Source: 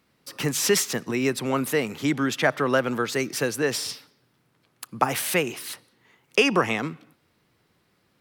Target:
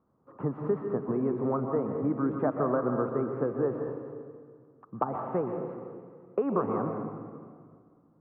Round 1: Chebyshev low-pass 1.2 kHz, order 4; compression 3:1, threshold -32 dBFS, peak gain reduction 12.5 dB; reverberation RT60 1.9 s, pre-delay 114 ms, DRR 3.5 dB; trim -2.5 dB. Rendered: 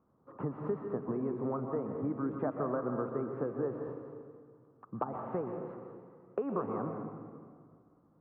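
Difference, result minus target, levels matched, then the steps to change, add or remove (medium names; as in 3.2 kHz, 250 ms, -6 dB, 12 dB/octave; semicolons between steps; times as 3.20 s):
compression: peak gain reduction +6.5 dB
change: compression 3:1, threshold -22 dBFS, peak gain reduction 5.5 dB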